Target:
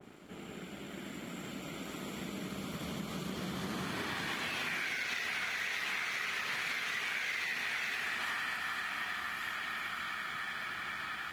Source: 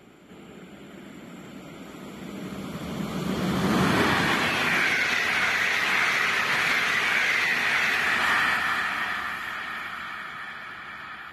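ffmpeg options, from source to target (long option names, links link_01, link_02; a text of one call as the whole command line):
ffmpeg -i in.wav -af "acompressor=threshold=-37dB:ratio=6,aeval=exprs='sgn(val(0))*max(abs(val(0))-0.00119,0)':channel_layout=same,adynamicequalizer=threshold=0.002:dfrequency=1900:dqfactor=0.7:tfrequency=1900:tqfactor=0.7:attack=5:release=100:ratio=0.375:range=2.5:mode=boostabove:tftype=highshelf" out.wav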